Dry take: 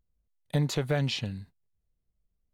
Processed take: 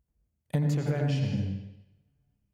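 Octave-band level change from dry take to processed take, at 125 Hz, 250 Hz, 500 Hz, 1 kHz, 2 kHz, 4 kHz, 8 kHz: +3.0 dB, +2.5 dB, −2.5 dB, −2.5 dB, −5.0 dB, −10.0 dB, can't be measured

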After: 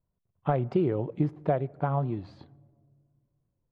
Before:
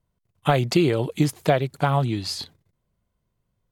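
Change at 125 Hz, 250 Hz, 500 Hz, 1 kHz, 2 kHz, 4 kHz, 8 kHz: −6.0 dB, −6.5 dB, −5.5 dB, −7.5 dB, −15.0 dB, below −25 dB, below −35 dB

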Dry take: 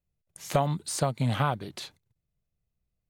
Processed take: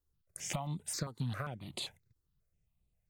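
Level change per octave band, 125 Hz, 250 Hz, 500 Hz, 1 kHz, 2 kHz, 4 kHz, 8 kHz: −10.0, −10.0, −16.0, −15.0, −8.5, −4.5, −4.5 decibels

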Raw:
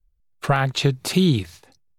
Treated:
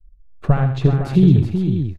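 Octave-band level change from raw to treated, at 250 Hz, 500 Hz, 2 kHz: +6.0, +1.0, −8.0 decibels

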